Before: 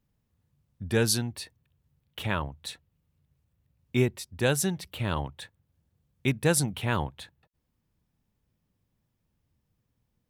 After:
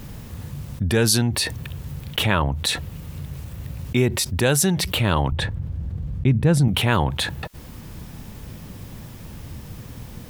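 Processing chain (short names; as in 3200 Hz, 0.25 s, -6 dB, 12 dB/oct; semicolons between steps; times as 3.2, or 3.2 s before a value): 5.32–6.68 RIAA curve playback; fast leveller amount 70%; gain -1.5 dB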